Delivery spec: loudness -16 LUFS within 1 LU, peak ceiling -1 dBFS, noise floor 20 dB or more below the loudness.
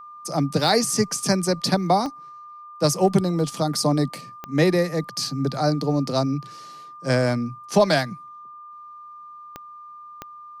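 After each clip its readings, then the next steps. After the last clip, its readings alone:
clicks 5; steady tone 1200 Hz; tone level -39 dBFS; loudness -22.5 LUFS; peak -6.0 dBFS; loudness target -16.0 LUFS
-> de-click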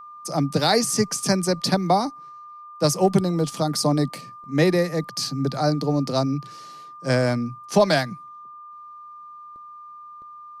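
clicks 0; steady tone 1200 Hz; tone level -39 dBFS
-> notch 1200 Hz, Q 30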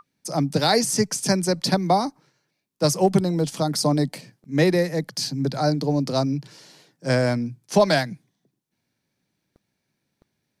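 steady tone none; loudness -22.5 LUFS; peak -6.0 dBFS; loudness target -16.0 LUFS
-> gain +6.5 dB; limiter -1 dBFS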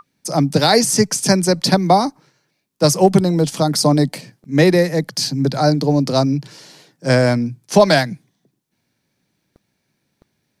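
loudness -16.0 LUFS; peak -1.0 dBFS; noise floor -71 dBFS

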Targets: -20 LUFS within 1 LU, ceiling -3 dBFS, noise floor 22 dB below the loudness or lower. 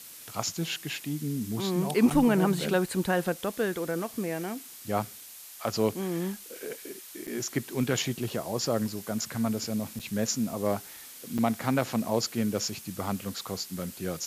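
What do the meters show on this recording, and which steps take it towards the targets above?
dropouts 4; longest dropout 6.3 ms; noise floor -47 dBFS; noise floor target -52 dBFS; loudness -30.0 LUFS; peak -11.5 dBFS; loudness target -20.0 LUFS
-> interpolate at 2.1/7.27/9.99/11.38, 6.3 ms; noise print and reduce 6 dB; gain +10 dB; limiter -3 dBFS

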